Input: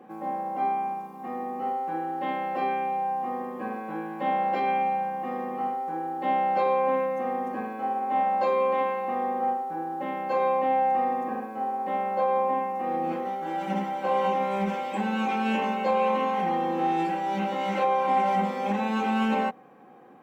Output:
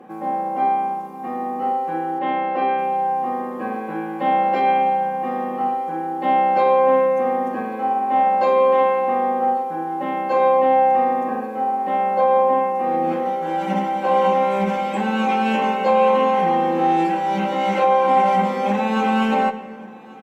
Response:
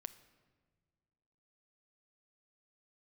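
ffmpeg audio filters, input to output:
-filter_complex "[0:a]asplit=3[link_01][link_02][link_03];[link_01]afade=type=out:start_time=2.18:duration=0.02[link_04];[link_02]highpass=190,lowpass=3600,afade=type=in:start_time=2.18:duration=0.02,afade=type=out:start_time=2.77:duration=0.02[link_05];[link_03]afade=type=in:start_time=2.77:duration=0.02[link_06];[link_04][link_05][link_06]amix=inputs=3:normalize=0,aecho=1:1:1135:0.075[link_07];[1:a]atrim=start_sample=2205,afade=type=out:start_time=0.4:duration=0.01,atrim=end_sample=18081,asetrate=25578,aresample=44100[link_08];[link_07][link_08]afir=irnorm=-1:irlink=0,volume=8dB"

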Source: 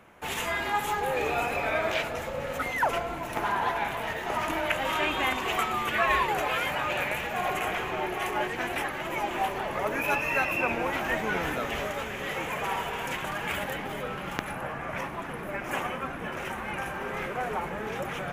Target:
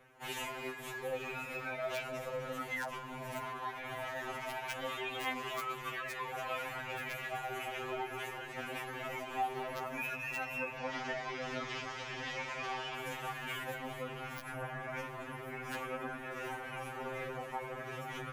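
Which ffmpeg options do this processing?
ffmpeg -i in.wav -filter_complex "[0:a]acompressor=threshold=-29dB:ratio=12,aeval=exprs='(mod(11.2*val(0)+1,2)-1)/11.2':channel_layout=same,asettb=1/sr,asplit=3[link_01][link_02][link_03];[link_01]atrim=end=10.774[link_04];[link_02]atrim=start=10.77:end=12.95,asetpts=PTS-STARTPTS,afade=type=in:duration=0.004:curve=qsin,afade=type=out:start_time=2.176:duration=0.004:curve=qsin,lowpass=frequency=5100:width_type=q:width=3.4[link_05];[link_03]atrim=start=12.946[link_06];[link_04][link_05]acrossfade=duration=0.004:curve1=hsin:curve2=qsin[link_07];[link_07][link_06]acrossfade=duration=0.004:curve1=qsin:curve2=hsin,afftfilt=real='re*2.45*eq(mod(b,6),0)':imag='im*2.45*eq(mod(b,6),0)':win_size=2048:overlap=0.75,volume=-4.5dB" out.wav

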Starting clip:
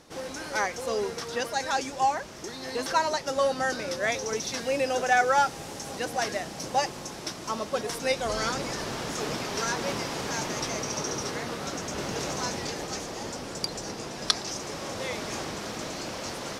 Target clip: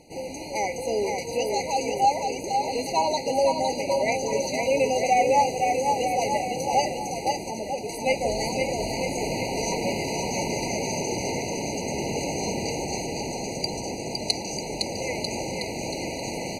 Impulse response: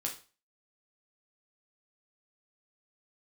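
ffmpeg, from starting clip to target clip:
-filter_complex "[0:a]aecho=1:1:510|943.5|1312|1625|1891:0.631|0.398|0.251|0.158|0.1,asettb=1/sr,asplit=3[link_01][link_02][link_03];[link_01]atrim=end=7.484[link_04];[link_02]atrim=start=7.48:end=8.06,asetpts=PTS-STARTPTS,afade=type=in:duration=0.004:curve=qsin,afade=type=out:start_time=0.576:duration=0.004:curve=qsin,acompressor=threshold=-29dB:ratio=4[link_05];[link_03]atrim=start=8.056[link_06];[link_04][link_05]acrossfade=duration=0.004:curve1=hsin:curve2=qsin[link_07];[link_07][link_06]acrossfade=duration=0.004:curve1=qsin:curve2=hsin,afftfilt=real='re*eq(mod(floor(b*sr/1024/980),2),0)':imag='im*eq(mod(floor(b*sr/1024/980),2),0)':win_size=1024:overlap=0.75,volume=3dB"

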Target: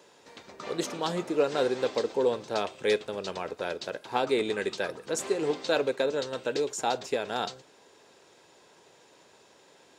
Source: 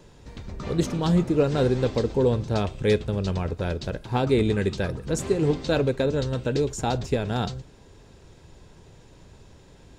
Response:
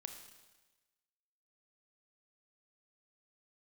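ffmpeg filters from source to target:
-af "highpass=460"

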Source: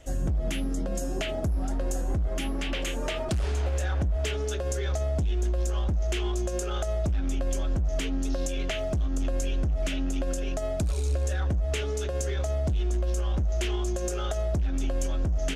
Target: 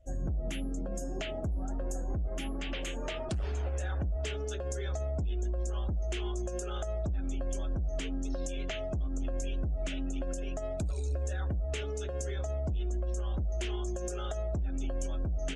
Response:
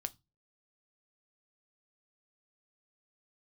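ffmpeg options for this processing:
-af "afftdn=noise_reduction=20:noise_floor=-46,volume=-6dB"

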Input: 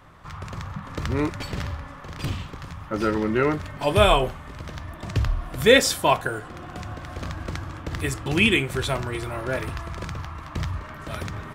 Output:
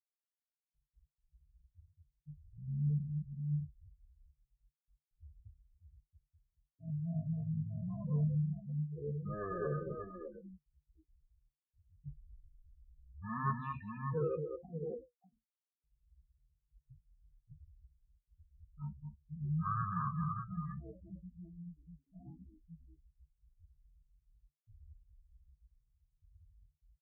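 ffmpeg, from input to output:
ffmpeg -i in.wav -filter_complex "[0:a]anlmdn=2.51,aecho=1:1:62|92|182|255|302|686:0.112|0.596|0.106|0.501|0.224|0.112,acrossover=split=640|1200[link_01][link_02][link_03];[link_01]asoftclip=type=tanh:threshold=-18.5dB[link_04];[link_04][link_02][link_03]amix=inputs=3:normalize=0,afftfilt=real='re*gte(hypot(re,im),0.2)':imag='im*gte(hypot(re,im),0.2)':win_size=1024:overlap=0.75,asplit=3[link_05][link_06][link_07];[link_05]bandpass=frequency=300:width_type=q:width=8,volume=0dB[link_08];[link_06]bandpass=frequency=870:width_type=q:width=8,volume=-6dB[link_09];[link_07]bandpass=frequency=2240:width_type=q:width=8,volume=-9dB[link_10];[link_08][link_09][link_10]amix=inputs=3:normalize=0,asetrate=18846,aresample=44100,aexciter=amount=8.2:drive=6.3:freq=8800,asetrate=50951,aresample=44100,atempo=0.865537,flanger=delay=7.2:depth=5:regen=-58:speed=0.41:shape=sinusoidal" out.wav

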